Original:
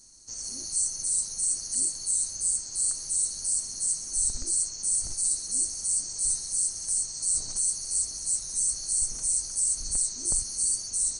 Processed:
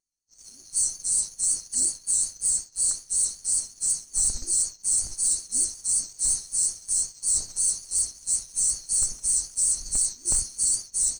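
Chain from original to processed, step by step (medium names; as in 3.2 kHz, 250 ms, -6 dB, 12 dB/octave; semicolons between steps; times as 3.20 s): vibrato 5.4 Hz 43 cents; expander -26 dBFS; waveshaping leveller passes 1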